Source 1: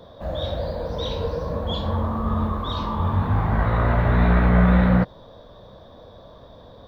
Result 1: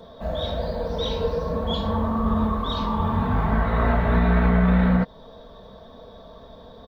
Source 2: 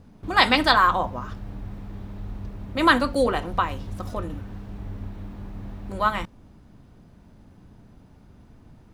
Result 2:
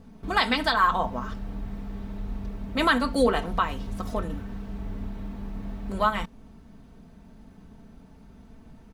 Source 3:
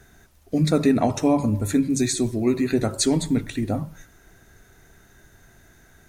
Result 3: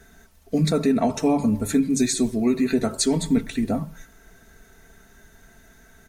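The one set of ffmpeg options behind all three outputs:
-af "aecho=1:1:4.5:0.56,alimiter=limit=0.299:level=0:latency=1:release=298"

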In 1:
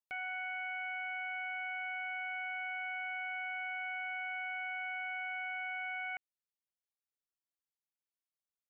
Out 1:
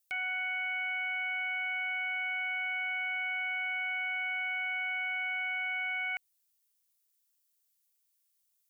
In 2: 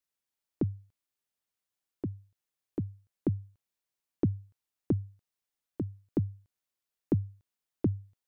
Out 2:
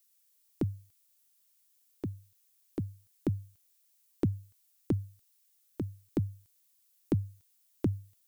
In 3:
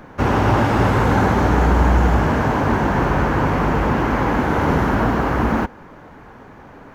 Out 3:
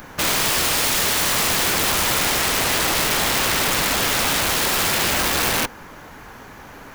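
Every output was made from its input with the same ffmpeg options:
-af "crystalizer=i=8.5:c=0,lowshelf=f=62:g=6,aeval=exprs='(mod(4.22*val(0)+1,2)-1)/4.22':c=same,volume=0.75"

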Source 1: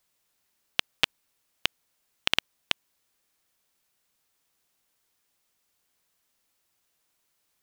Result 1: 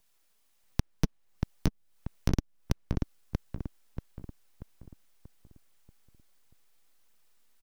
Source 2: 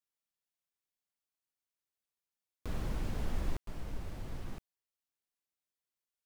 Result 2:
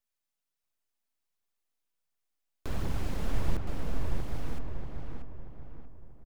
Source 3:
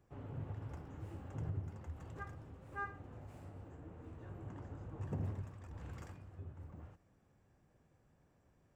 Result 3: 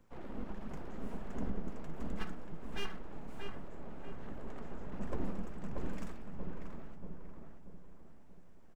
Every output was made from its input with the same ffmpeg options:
-filter_complex "[0:a]aeval=exprs='abs(val(0))':c=same,aphaser=in_gain=1:out_gain=1:delay=4.9:decay=0.29:speed=1.4:type=triangular,acrossover=split=270[s0][s1];[s1]acompressor=threshold=0.00794:ratio=8[s2];[s0][s2]amix=inputs=2:normalize=0,asplit=2[s3][s4];[s4]adelay=635,lowpass=f=1800:p=1,volume=0.708,asplit=2[s5][s6];[s6]adelay=635,lowpass=f=1800:p=1,volume=0.45,asplit=2[s7][s8];[s8]adelay=635,lowpass=f=1800:p=1,volume=0.45,asplit=2[s9][s10];[s10]adelay=635,lowpass=f=1800:p=1,volume=0.45,asplit=2[s11][s12];[s12]adelay=635,lowpass=f=1800:p=1,volume=0.45,asplit=2[s13][s14];[s14]adelay=635,lowpass=f=1800:p=1,volume=0.45[s15];[s3][s5][s7][s9][s11][s13][s15]amix=inputs=7:normalize=0,volume=1.68"

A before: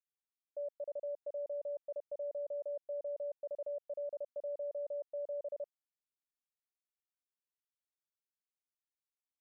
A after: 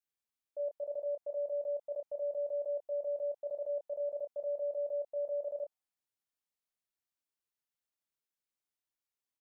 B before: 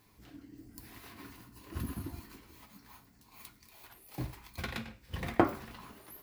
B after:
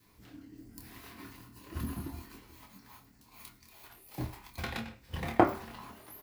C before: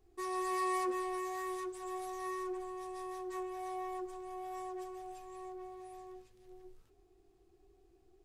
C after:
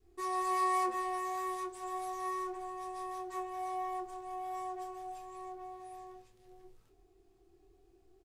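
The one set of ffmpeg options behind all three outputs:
-filter_complex "[0:a]adynamicequalizer=threshold=0.002:dfrequency=800:dqfactor=2.3:tfrequency=800:tqfactor=2.3:attack=5:release=100:ratio=0.375:range=2.5:mode=boostabove:tftype=bell,asplit=2[s0][s1];[s1]adelay=26,volume=0.473[s2];[s0][s2]amix=inputs=2:normalize=0"

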